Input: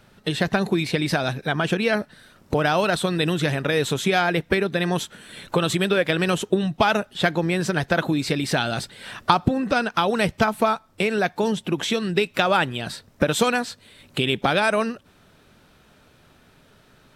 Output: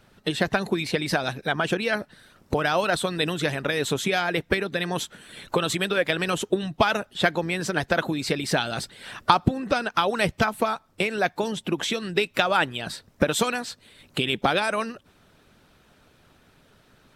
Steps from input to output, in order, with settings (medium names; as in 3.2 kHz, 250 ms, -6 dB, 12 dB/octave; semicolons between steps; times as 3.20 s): harmonic-percussive split percussive +7 dB; trim -7 dB